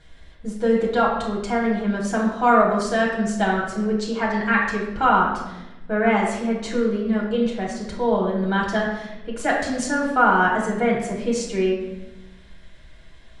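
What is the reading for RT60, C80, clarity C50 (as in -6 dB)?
1.0 s, 6.0 dB, 3.0 dB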